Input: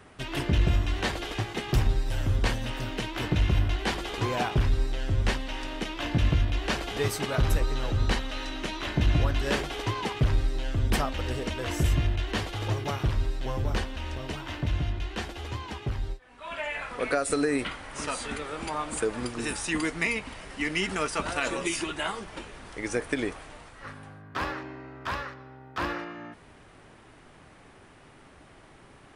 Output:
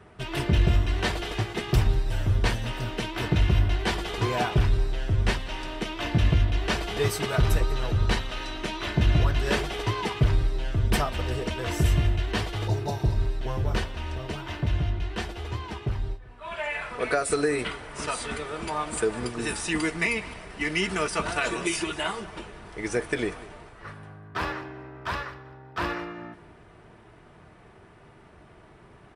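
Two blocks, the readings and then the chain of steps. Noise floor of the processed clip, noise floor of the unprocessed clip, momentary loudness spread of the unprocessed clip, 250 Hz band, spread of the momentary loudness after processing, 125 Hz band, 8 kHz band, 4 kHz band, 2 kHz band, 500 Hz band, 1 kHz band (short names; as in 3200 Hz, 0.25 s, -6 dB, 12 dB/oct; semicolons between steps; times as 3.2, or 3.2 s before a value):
-52 dBFS, -53 dBFS, 11 LU, +1.0 dB, 11 LU, +3.0 dB, +1.0 dB, +1.5 dB, +1.5 dB, +2.5 dB, +1.5 dB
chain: spectral repair 12.7–13.23, 1000–3500 Hz after; notch 6700 Hz, Q 20; notch comb 270 Hz; feedback echo 0.195 s, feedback 40%, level -18.5 dB; mismatched tape noise reduction decoder only; gain +3 dB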